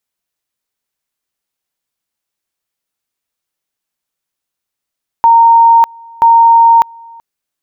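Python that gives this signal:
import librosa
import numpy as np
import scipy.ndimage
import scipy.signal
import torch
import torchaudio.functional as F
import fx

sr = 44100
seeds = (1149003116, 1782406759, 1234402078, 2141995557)

y = fx.two_level_tone(sr, hz=923.0, level_db=-2.5, drop_db=28.5, high_s=0.6, low_s=0.38, rounds=2)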